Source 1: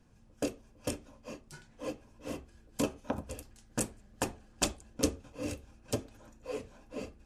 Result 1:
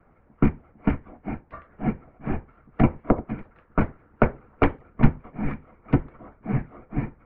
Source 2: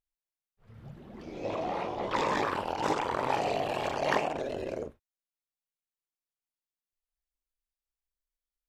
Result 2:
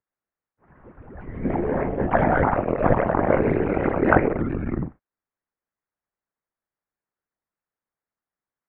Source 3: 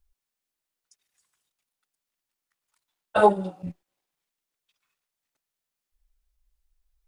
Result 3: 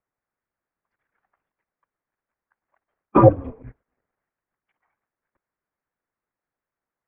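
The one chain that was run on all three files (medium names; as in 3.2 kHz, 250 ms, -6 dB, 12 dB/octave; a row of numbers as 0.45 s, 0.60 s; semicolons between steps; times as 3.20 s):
mistuned SSB -300 Hz 290–2200 Hz; harmonic-percussive split percussive +8 dB; peak normalisation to -1.5 dBFS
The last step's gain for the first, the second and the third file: +9.5 dB, +5.5 dB, +2.5 dB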